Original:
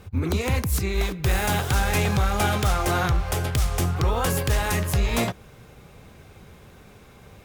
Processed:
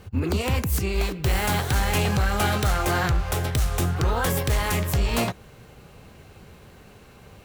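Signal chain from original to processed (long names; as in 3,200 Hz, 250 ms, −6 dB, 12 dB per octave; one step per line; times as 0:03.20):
hard clipping −16.5 dBFS, distortion −23 dB
formants moved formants +2 semitones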